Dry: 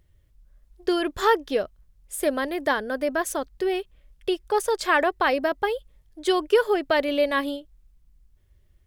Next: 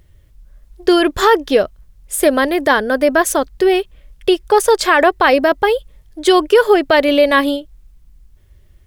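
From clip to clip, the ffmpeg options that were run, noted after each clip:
-af "alimiter=level_in=4.47:limit=0.891:release=50:level=0:latency=1,volume=0.891"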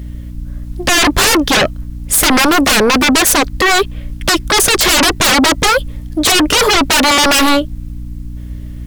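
-af "aeval=exprs='val(0)+0.00891*(sin(2*PI*60*n/s)+sin(2*PI*2*60*n/s)/2+sin(2*PI*3*60*n/s)/3+sin(2*PI*4*60*n/s)/4+sin(2*PI*5*60*n/s)/5)':c=same,aeval=exprs='0.841*sin(PI/2*7.08*val(0)/0.841)':c=same,volume=0.531"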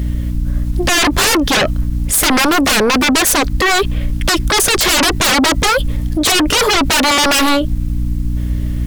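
-af "alimiter=limit=0.133:level=0:latency=1:release=37,volume=2.66"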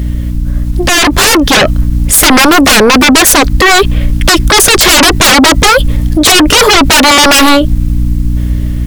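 -af "dynaudnorm=f=520:g=5:m=1.5,volume=1.68"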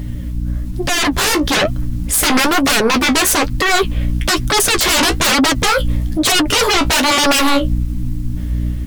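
-af "flanger=delay=6.9:depth=10:regen=37:speed=1.1:shape=sinusoidal,volume=0.562"

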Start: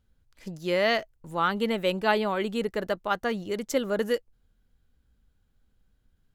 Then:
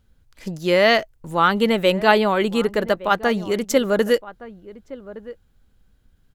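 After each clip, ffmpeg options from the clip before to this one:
-filter_complex "[0:a]asplit=2[s0][s1];[s1]adelay=1166,volume=0.141,highshelf=f=4000:g=-26.2[s2];[s0][s2]amix=inputs=2:normalize=0,volume=2.66"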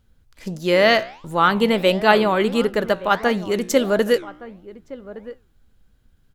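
-af "flanger=delay=7.5:depth=9.4:regen=86:speed=1.5:shape=sinusoidal,volume=1.78"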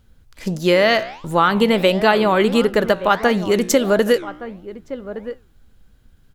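-af "acompressor=threshold=0.141:ratio=5,volume=2"

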